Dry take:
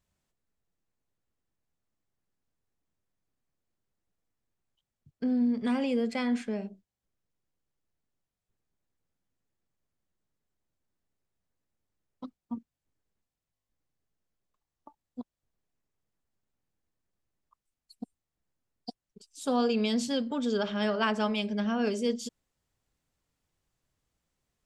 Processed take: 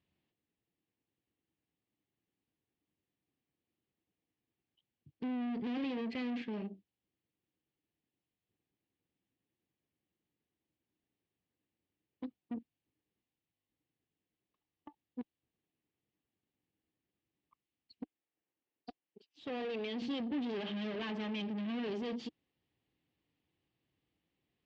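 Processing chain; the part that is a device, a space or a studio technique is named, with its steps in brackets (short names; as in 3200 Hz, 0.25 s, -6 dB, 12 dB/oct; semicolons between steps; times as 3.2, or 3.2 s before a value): 18.03–20.02 tone controls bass -14 dB, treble -11 dB; guitar amplifier (tube stage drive 39 dB, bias 0.55; tone controls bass -1 dB, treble -5 dB; speaker cabinet 95–4200 Hz, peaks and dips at 310 Hz +7 dB, 610 Hz -6 dB, 1000 Hz -5 dB, 1400 Hz -10 dB, 2900 Hz +4 dB); gain +3 dB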